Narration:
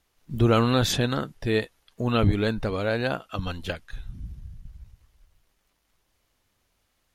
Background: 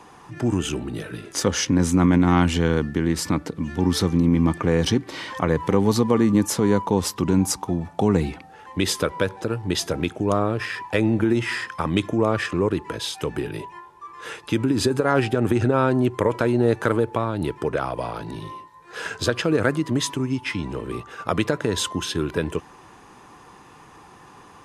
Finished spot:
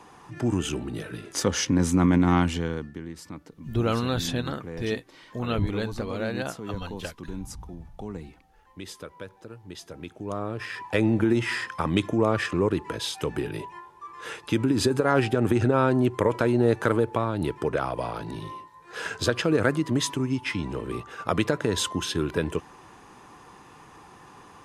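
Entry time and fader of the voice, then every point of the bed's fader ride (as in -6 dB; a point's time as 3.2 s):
3.35 s, -5.0 dB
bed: 2.35 s -3 dB
3.14 s -17.5 dB
9.83 s -17.5 dB
11 s -2 dB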